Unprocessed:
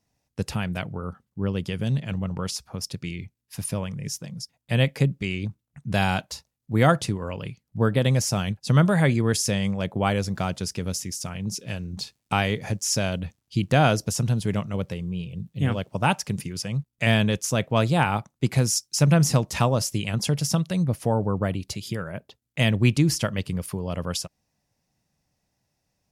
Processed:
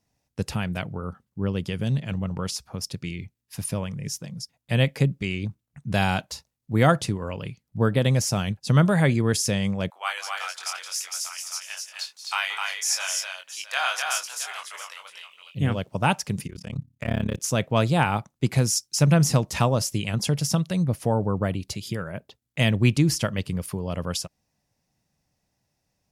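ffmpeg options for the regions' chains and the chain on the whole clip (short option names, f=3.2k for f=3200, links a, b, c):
-filter_complex "[0:a]asettb=1/sr,asplit=3[a][b][c];[a]atrim=end=9.904[d];[b]atrim=start=9.9:end=15.55,asetpts=PTS-STARTPTS,afade=t=in:d=0.004:c=qsin,afade=t=out:st=5.646:d=0.004:c=qsin,highpass=f=1k:w=0.5412,highpass=f=1k:w=1.3066,asplit=2[e][f];[f]adelay=22,volume=-5dB[g];[e][g]amix=inputs=2:normalize=0,atrim=end_sample=249165,aecho=1:1:177|256|670:0.188|0.668|0.2,atrim=end_sample=249165[h];[c]atrim=start=15.546[i];[d][h]acrossfade=d=0.004:c1=hsin:c2=qsin[j];[j][i]acrossfade=d=0.004:c1=qsin:c2=hsin,asettb=1/sr,asplit=3[k][l][m];[k]atrim=end=16.474[n];[l]atrim=start=16.47:end=17.4,asetpts=PTS-STARTPTS,afade=t=in:d=0.004:c=qsin,afade=t=out:st=0.926:d=0.004:c=qsin,bandreject=f=60:t=h:w=6,bandreject=f=120:t=h:w=6,bandreject=f=180:t=h:w=6,bandreject=f=240:t=h:w=6,bandreject=f=300:t=h:w=6,deesser=1,tremolo=f=34:d=1[o];[m]atrim=start=17.396[p];[n][o]acrossfade=d=0.004:c1=hsin:c2=qsin[q];[q][p]acrossfade=d=0.004:c1=qsin:c2=hsin"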